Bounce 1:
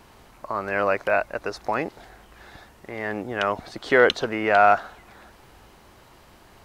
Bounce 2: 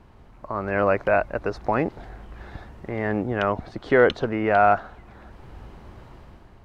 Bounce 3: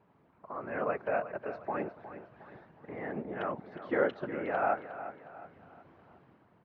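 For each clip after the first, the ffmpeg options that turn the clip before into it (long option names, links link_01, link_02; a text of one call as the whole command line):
ffmpeg -i in.wav -af "lowpass=frequency=1800:poles=1,lowshelf=frequency=220:gain=10.5,dynaudnorm=framelen=160:gausssize=7:maxgain=8dB,volume=-4.5dB" out.wav
ffmpeg -i in.wav -af "afftfilt=real='hypot(re,im)*cos(2*PI*random(0))':imag='hypot(re,im)*sin(2*PI*random(1))':win_size=512:overlap=0.75,highpass=170,lowpass=2500,aecho=1:1:361|722|1083|1444:0.237|0.0996|0.0418|0.0176,volume=-5.5dB" out.wav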